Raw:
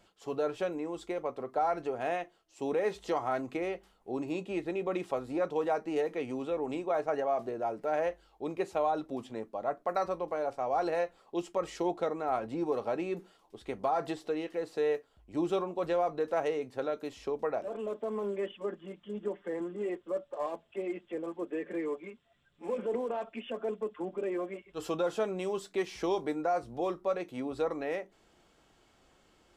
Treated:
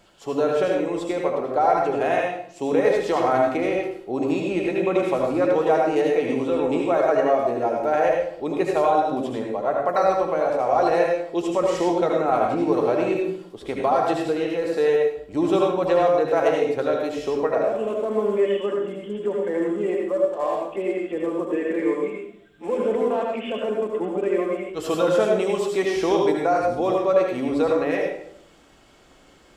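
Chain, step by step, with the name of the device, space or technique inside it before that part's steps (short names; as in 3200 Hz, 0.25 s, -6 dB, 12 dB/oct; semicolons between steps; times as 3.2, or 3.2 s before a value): bathroom (reverb RT60 0.65 s, pre-delay 68 ms, DRR -0.5 dB); gain +8.5 dB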